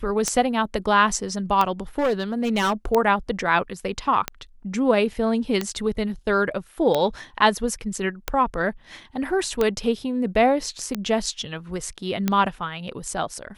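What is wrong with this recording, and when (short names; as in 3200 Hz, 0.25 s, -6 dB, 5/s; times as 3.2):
tick 45 rpm -8 dBFS
1.98–2.85 clipped -17.5 dBFS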